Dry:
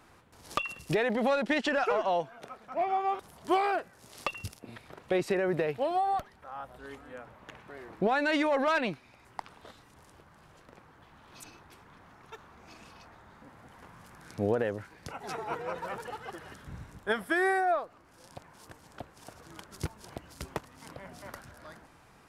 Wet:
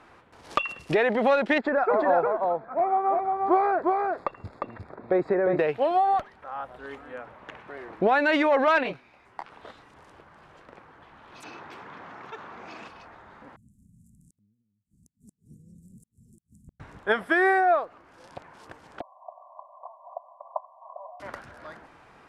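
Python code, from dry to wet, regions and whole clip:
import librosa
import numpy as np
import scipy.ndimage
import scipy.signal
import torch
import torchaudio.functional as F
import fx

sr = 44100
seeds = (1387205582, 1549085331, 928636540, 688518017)

y = fx.chain(x, sr, fx.moving_average(points=15),
    fx.echo_single(ms=354, db=-3.0), at=(1.58, 5.59))
y = fx.chain(y, sr, fx.hum_notches(base_hz=50, count=2),
    fx.detune_double(cents=38), at=(8.83, 9.52))
y = fx.chain(y, sr, fx.highpass(hz=130.0, slope=12),
    fx.peak_eq(hz=10000.0, db=-10.5, octaves=0.47),
    fx.env_flatten(amount_pct=50), at=(11.43, 12.88))
y = fx.chain(y, sr, fx.cheby1_bandstop(low_hz=220.0, high_hz=7500.0, order=4),
    fx.high_shelf(hz=7600.0, db=4.0),
    fx.gate_flip(shuts_db=-37.0, range_db=-35), at=(13.56, 16.8))
y = fx.chain(y, sr, fx.brickwall_bandpass(low_hz=520.0, high_hz=1200.0),
    fx.comb(ms=2.9, depth=0.7), at=(19.01, 21.2))
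y = scipy.signal.sosfilt(scipy.signal.butter(2, 9800.0, 'lowpass', fs=sr, output='sos'), y)
y = fx.bass_treble(y, sr, bass_db=-7, treble_db=-11)
y = y * librosa.db_to_amplitude(6.5)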